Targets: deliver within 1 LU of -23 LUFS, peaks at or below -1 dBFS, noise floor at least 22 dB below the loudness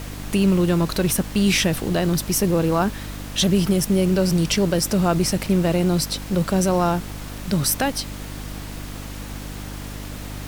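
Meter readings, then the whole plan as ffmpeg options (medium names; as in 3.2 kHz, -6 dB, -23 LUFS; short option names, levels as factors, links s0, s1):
hum 50 Hz; highest harmonic 300 Hz; hum level -32 dBFS; noise floor -33 dBFS; noise floor target -43 dBFS; loudness -20.5 LUFS; peak level -7.0 dBFS; loudness target -23.0 LUFS
-> -af "bandreject=f=50:t=h:w=4,bandreject=f=100:t=h:w=4,bandreject=f=150:t=h:w=4,bandreject=f=200:t=h:w=4,bandreject=f=250:t=h:w=4,bandreject=f=300:t=h:w=4"
-af "afftdn=nr=10:nf=-33"
-af "volume=0.75"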